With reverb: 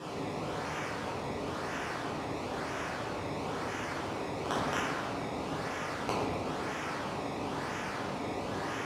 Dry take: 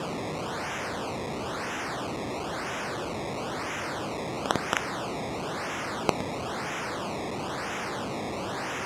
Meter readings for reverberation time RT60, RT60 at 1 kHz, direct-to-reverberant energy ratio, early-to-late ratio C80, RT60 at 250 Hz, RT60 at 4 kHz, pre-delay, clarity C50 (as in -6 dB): 1.6 s, 1.5 s, -9.0 dB, 1.5 dB, 2.0 s, 0.95 s, 7 ms, -1.0 dB